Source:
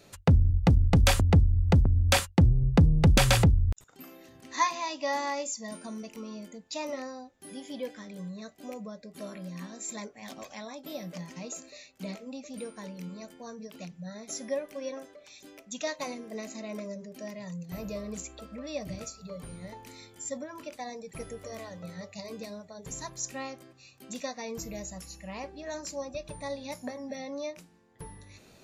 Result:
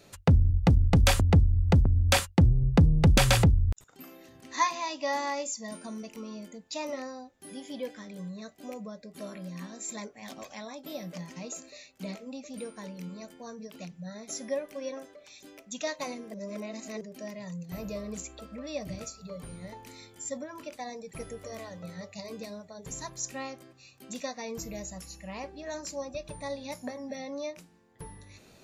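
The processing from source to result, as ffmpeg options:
ffmpeg -i in.wav -filter_complex "[0:a]asplit=3[link_01][link_02][link_03];[link_01]atrim=end=16.342[link_04];[link_02]atrim=start=16.338:end=17.012,asetpts=PTS-STARTPTS,areverse[link_05];[link_03]atrim=start=17.008[link_06];[link_04][link_05]acrossfade=duration=0.004:curve1=hsin:curve2=hsin[link_07];[link_07][link_06]acrossfade=duration=0.004:curve1=hsin:curve2=hsin" out.wav

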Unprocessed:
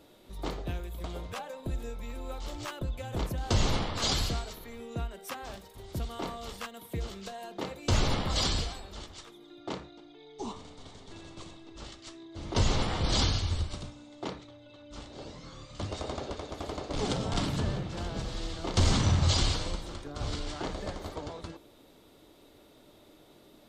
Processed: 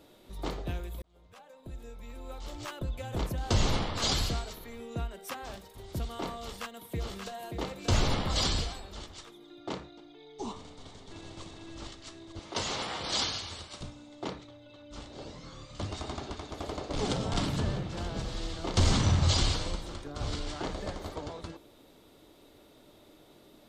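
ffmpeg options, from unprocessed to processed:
ffmpeg -i in.wav -filter_complex "[0:a]asplit=2[link_01][link_02];[link_02]afade=type=in:start_time=6.41:duration=0.01,afade=type=out:start_time=7.56:duration=0.01,aecho=0:1:580|1160:0.501187|0.0501187[link_03];[link_01][link_03]amix=inputs=2:normalize=0,asplit=2[link_04][link_05];[link_05]afade=type=in:start_time=10.69:duration=0.01,afade=type=out:start_time=11.42:duration=0.01,aecho=0:1:450|900|1350|1800|2250|2700|3150|3600:0.707946|0.38937|0.214154|0.117784|0.0647815|0.0356298|0.0195964|0.010778[link_06];[link_04][link_06]amix=inputs=2:normalize=0,asettb=1/sr,asplit=3[link_07][link_08][link_09];[link_07]atrim=end=12.394[link_10];[link_08]atrim=start=12.39:end=13.81,asetpts=PTS-STARTPTS,afade=type=in:duration=0.004:curve=qsin,afade=type=out:start_time=1.416:duration=0.004:curve=qsin,highpass=frequency=660:poles=1[link_11];[link_09]atrim=start=13.806[link_12];[link_10][link_11]acrossfade=duration=0.004:curve1=hsin:curve2=qsin[link_13];[link_13][link_12]acrossfade=duration=0.004:curve1=qsin:curve2=hsin,asettb=1/sr,asplit=3[link_14][link_15][link_16];[link_14]atrim=end=15.914[link_17];[link_15]atrim=start=15.91:end=16.53,asetpts=PTS-STARTPTS,afade=type=in:duration=0.004:curve=qsin,afade=type=out:start_time=0.616:duration=0.004:curve=qsin,equalizer=frequency=520:width_type=o:width=0.38:gain=-12.5[link_18];[link_16]atrim=start=16.526[link_19];[link_17][link_18]acrossfade=duration=0.004:curve1=hsin:curve2=qsin[link_20];[link_20][link_19]acrossfade=duration=0.004:curve1=qsin:curve2=hsin,asplit=2[link_21][link_22];[link_21]atrim=end=1.02,asetpts=PTS-STARTPTS,afade=type=out:start_time=1.016:duration=0.004:curve=hsin[link_23];[link_22]atrim=start=1.02,asetpts=PTS-STARTPTS,afade=type=in:duration=1.99[link_24];[link_23][link_24]concat=n=2:v=0:a=1" out.wav

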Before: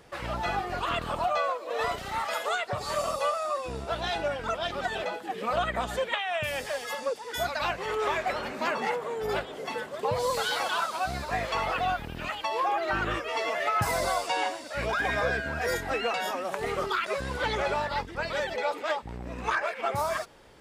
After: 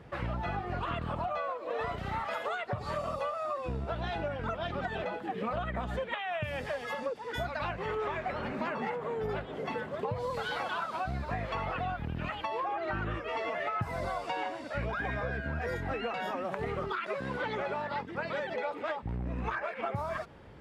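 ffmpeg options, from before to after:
ffmpeg -i in.wav -filter_complex "[0:a]asettb=1/sr,asplit=3[link_01][link_02][link_03];[link_01]atrim=end=16.924[link_04];[link_02]atrim=start=16.92:end=18.67,asetpts=PTS-STARTPTS,afade=type=in:duration=0.004:curve=qsin,afade=type=out:start_time=1.746:duration=0.004:curve=qsin,highpass=200[link_05];[link_03]atrim=start=18.666[link_06];[link_04][link_05]acrossfade=duration=0.004:curve1=hsin:curve2=qsin[link_07];[link_07][link_06]acrossfade=duration=0.004:curve1=qsin:curve2=hsin,highpass=55,bass=frequency=250:gain=10,treble=frequency=4000:gain=-15,acompressor=threshold=-31dB:ratio=6" out.wav

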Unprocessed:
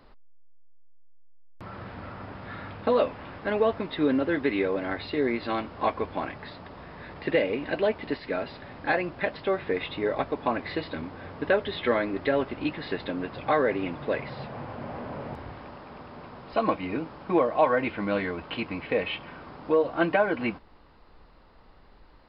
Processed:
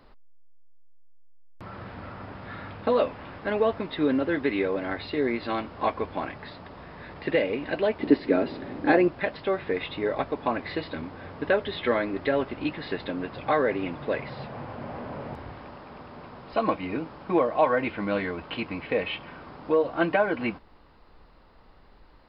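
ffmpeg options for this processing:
ffmpeg -i in.wav -filter_complex "[0:a]asettb=1/sr,asplit=3[link_01][link_02][link_03];[link_01]atrim=end=8.004[link_04];[link_02]atrim=start=8:end=9.08,asetpts=PTS-STARTPTS,afade=type=in:duration=0.004:curve=qsin,afade=type=out:start_time=1.076:duration=0.004:curve=qsin,equalizer=frequency=310:width=1:gain=13.5[link_05];[link_03]atrim=start=9.076[link_06];[link_04][link_05]acrossfade=duration=0.004:curve1=hsin:curve2=qsin[link_07];[link_07][link_06]acrossfade=duration=0.004:curve1=qsin:curve2=hsin" out.wav

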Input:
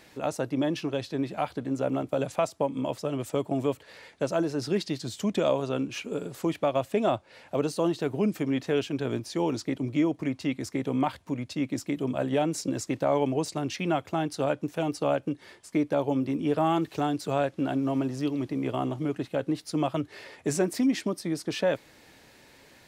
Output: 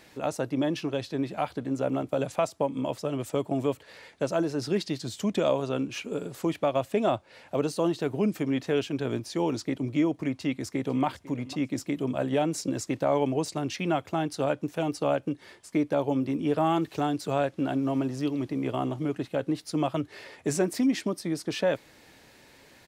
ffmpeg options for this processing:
ffmpeg -i in.wav -filter_complex "[0:a]asplit=2[link_01][link_02];[link_02]afade=type=in:start_time=10.33:duration=0.01,afade=type=out:start_time=11.05:duration=0.01,aecho=0:1:500|1000|1500:0.125893|0.0377678|0.0113303[link_03];[link_01][link_03]amix=inputs=2:normalize=0" out.wav

